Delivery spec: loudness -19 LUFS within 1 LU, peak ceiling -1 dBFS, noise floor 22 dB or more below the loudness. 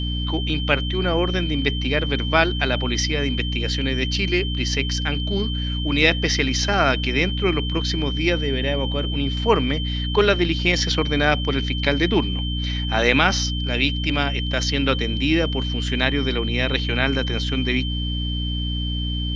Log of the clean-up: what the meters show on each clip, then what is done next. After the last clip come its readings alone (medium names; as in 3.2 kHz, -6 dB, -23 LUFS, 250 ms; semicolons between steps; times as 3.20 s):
hum 60 Hz; highest harmonic 300 Hz; hum level -23 dBFS; steady tone 3.1 kHz; tone level -29 dBFS; loudness -21.5 LUFS; peak level -1.5 dBFS; loudness target -19.0 LUFS
-> de-hum 60 Hz, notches 5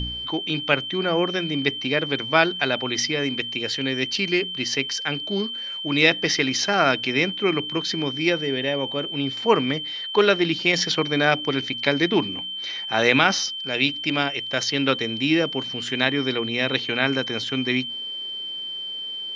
hum not found; steady tone 3.1 kHz; tone level -29 dBFS
-> band-stop 3.1 kHz, Q 30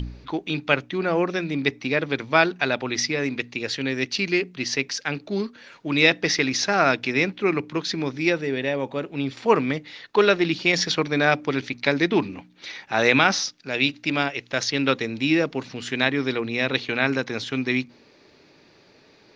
steady tone not found; loudness -23.0 LUFS; peak level -2.0 dBFS; loudness target -19.0 LUFS
-> trim +4 dB; peak limiter -1 dBFS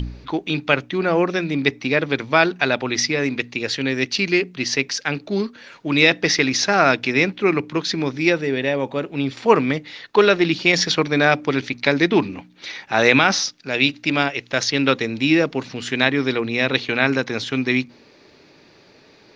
loudness -19.5 LUFS; peak level -1.0 dBFS; noise floor -51 dBFS